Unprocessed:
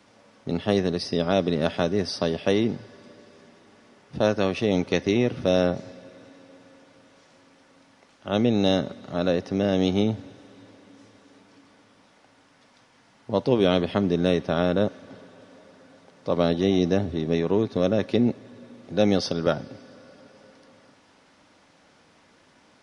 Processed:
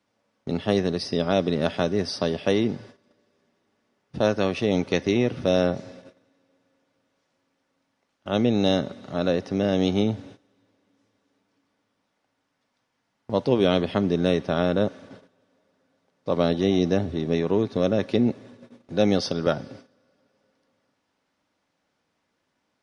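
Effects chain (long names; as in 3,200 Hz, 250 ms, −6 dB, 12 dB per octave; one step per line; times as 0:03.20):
noise gate −44 dBFS, range −17 dB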